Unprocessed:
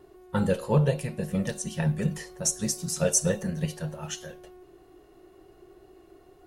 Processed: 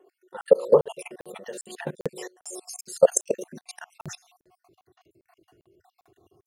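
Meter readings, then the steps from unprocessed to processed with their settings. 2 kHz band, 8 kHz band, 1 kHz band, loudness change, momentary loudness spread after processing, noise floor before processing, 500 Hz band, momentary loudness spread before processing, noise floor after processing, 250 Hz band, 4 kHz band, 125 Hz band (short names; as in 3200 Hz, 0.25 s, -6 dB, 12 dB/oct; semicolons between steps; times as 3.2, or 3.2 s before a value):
-4.0 dB, -4.5 dB, +1.0 dB, +3.5 dB, 21 LU, -56 dBFS, +7.5 dB, 12 LU, under -85 dBFS, -11.0 dB, -7.0 dB, -16.5 dB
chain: random spectral dropouts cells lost 56%; level quantiser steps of 23 dB; high-pass sweep 460 Hz -> 100 Hz, 3.25–4.14; crackling interface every 0.40 s, samples 2048, zero, from 0.41; gain +8 dB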